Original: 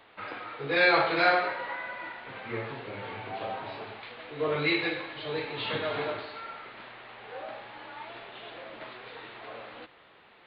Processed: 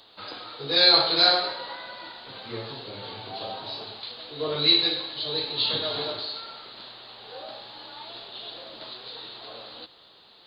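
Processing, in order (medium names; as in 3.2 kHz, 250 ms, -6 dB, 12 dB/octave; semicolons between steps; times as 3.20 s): resonant high shelf 3.1 kHz +12 dB, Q 3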